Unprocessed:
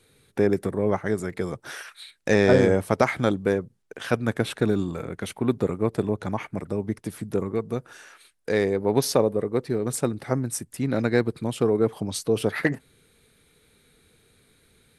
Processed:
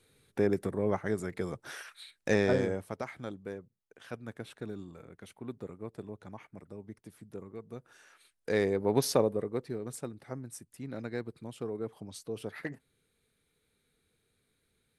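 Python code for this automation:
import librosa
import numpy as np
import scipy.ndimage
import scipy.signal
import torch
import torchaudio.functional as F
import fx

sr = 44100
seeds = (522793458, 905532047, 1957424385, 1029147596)

y = fx.gain(x, sr, db=fx.line((2.32, -6.5), (3.02, -18.0), (7.54, -18.0), (8.56, -5.5), (9.21, -5.5), (10.11, -15.5)))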